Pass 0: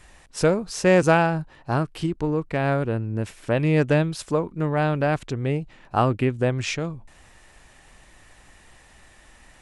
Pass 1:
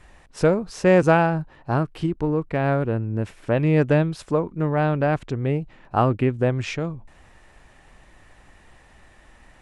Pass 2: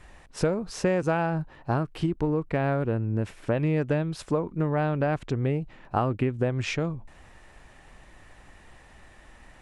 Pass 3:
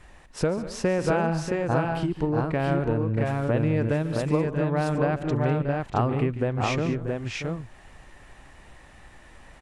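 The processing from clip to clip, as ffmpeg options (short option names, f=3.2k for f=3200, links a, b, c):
-af "highshelf=f=3.3k:g=-10.5,volume=1.5dB"
-af "acompressor=threshold=-21dB:ratio=6"
-af "aecho=1:1:144|199|635|670:0.178|0.158|0.316|0.708"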